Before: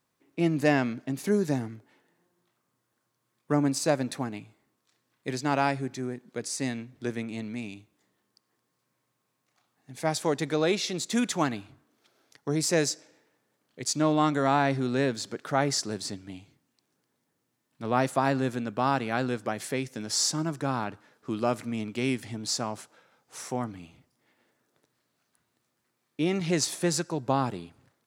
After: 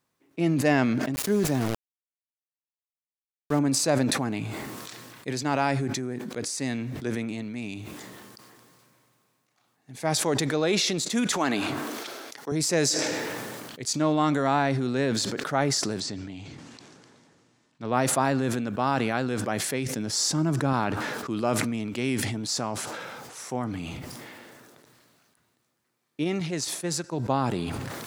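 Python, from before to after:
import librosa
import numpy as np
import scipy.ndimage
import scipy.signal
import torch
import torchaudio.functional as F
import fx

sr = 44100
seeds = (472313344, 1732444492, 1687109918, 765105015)

y = fx.sample_gate(x, sr, floor_db=-36.0, at=(1.14, 3.59))
y = fx.highpass(y, sr, hz=270.0, slope=12, at=(11.32, 12.52))
y = fx.lowpass(y, sr, hz=7500.0, slope=24, at=(16.0, 17.94))
y = fx.low_shelf(y, sr, hz=450.0, db=6.0, at=(19.86, 20.73))
y = fx.upward_expand(y, sr, threshold_db=-42.0, expansion=2.5, at=(26.23, 27.11), fade=0.02)
y = fx.sustainer(y, sr, db_per_s=22.0)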